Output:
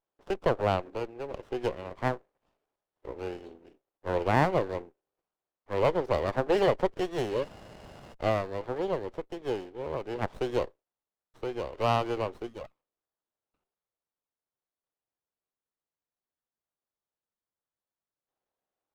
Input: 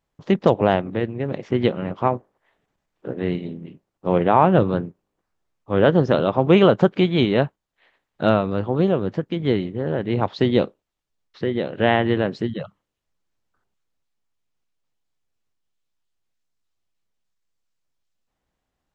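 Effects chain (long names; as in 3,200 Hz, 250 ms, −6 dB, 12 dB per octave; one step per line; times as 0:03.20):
healed spectral selection 0:07.33–0:08.11, 610–2,900 Hz before
high-pass filter 370 Hz 24 dB per octave
windowed peak hold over 17 samples
level −7 dB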